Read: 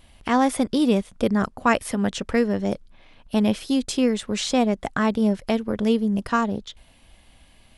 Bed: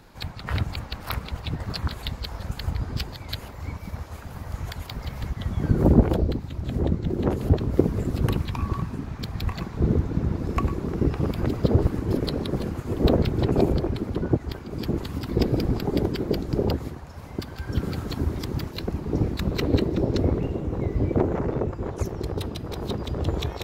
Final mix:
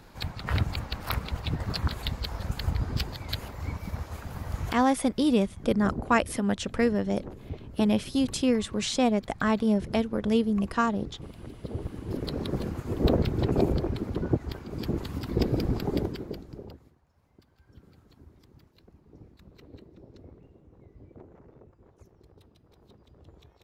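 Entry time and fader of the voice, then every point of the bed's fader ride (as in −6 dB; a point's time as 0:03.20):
4.45 s, −3.5 dB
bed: 0:04.69 −0.5 dB
0:04.90 −18 dB
0:11.58 −18 dB
0:12.44 −3.5 dB
0:15.94 −3.5 dB
0:16.96 −27.5 dB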